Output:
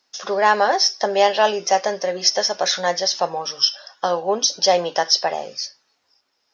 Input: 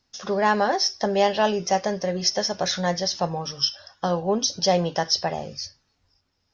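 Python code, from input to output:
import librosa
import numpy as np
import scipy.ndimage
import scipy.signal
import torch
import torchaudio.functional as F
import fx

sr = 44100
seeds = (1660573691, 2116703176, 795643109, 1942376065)

y = scipy.signal.sosfilt(scipy.signal.butter(2, 440.0, 'highpass', fs=sr, output='sos'), x)
y = y * 10.0 ** (5.5 / 20.0)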